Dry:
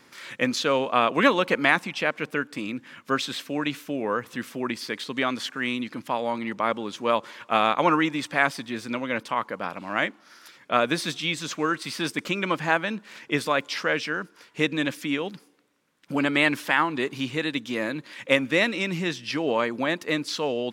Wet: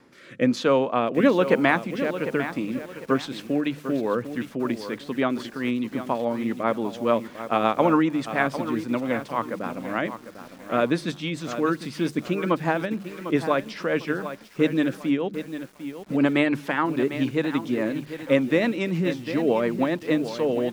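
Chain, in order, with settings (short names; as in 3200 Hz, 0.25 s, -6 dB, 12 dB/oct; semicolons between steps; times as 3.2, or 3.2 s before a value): tilt shelf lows +6.5 dB, about 1400 Hz; notches 50/100/150/200 Hz; rotary speaker horn 1.1 Hz, later 7 Hz, at 2.04; lo-fi delay 0.75 s, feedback 35%, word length 7-bit, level -10.5 dB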